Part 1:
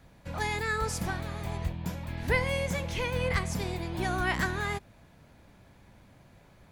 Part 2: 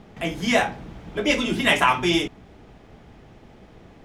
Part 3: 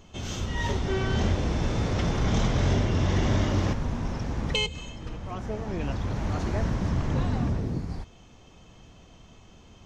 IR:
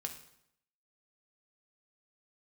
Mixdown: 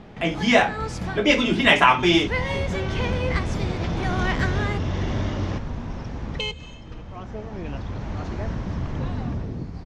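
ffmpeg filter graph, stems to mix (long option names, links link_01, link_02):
-filter_complex "[0:a]volume=2.5dB[link_01];[1:a]volume=3dB,asplit=2[link_02][link_03];[2:a]adelay=1850,volume=-1.5dB[link_04];[link_03]apad=whole_len=296281[link_05];[link_01][link_05]sidechaincompress=threshold=-32dB:ratio=8:attack=40:release=134[link_06];[link_06][link_02][link_04]amix=inputs=3:normalize=0,lowpass=5200"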